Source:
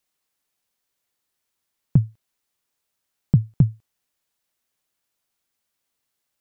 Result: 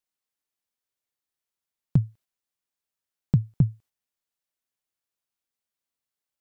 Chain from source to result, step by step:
noise gate −46 dBFS, range −7 dB
level −4 dB

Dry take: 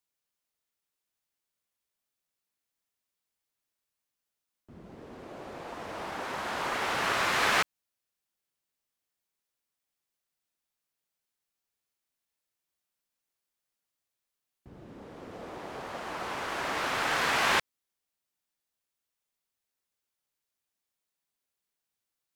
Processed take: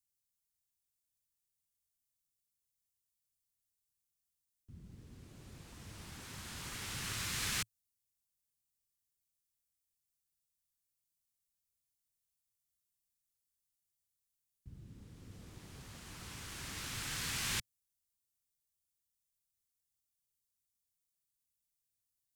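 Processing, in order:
drawn EQ curve 110 Hz 0 dB, 650 Hz −29 dB, 8,300 Hz −2 dB
level +3 dB

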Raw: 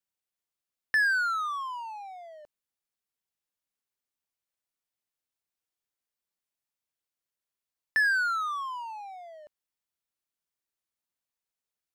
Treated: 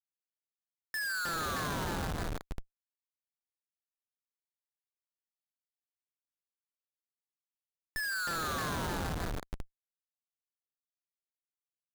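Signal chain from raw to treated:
delay that swaps between a low-pass and a high-pass 155 ms, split 1,500 Hz, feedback 86%, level −7 dB
comparator with hysteresis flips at −30.5 dBFS

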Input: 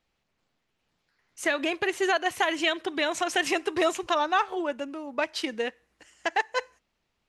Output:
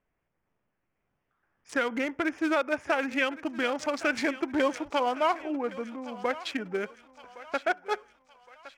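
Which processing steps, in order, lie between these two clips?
adaptive Wiener filter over 9 samples
feedback echo with a high-pass in the loop 925 ms, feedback 51%, high-pass 740 Hz, level −15 dB
speed change −17%
level −1.5 dB

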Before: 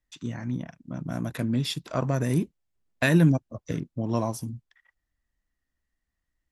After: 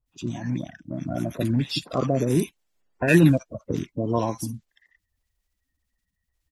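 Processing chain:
spectral magnitudes quantised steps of 30 dB
multiband delay without the direct sound lows, highs 60 ms, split 1,300 Hz
level +3.5 dB

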